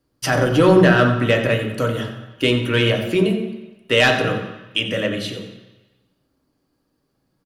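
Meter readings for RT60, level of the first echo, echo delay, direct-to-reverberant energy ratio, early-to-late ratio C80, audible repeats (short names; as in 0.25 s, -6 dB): 1.1 s, -12.5 dB, 90 ms, 2.5 dB, 8.5 dB, 1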